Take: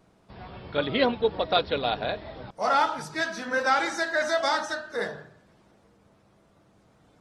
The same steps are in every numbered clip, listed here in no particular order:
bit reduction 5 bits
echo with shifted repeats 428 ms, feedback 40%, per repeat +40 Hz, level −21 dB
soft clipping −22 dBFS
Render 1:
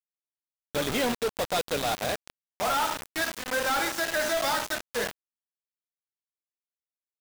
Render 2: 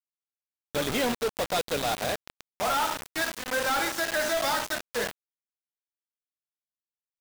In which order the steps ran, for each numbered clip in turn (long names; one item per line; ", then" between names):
soft clipping, then echo with shifted repeats, then bit reduction
echo with shifted repeats, then soft clipping, then bit reduction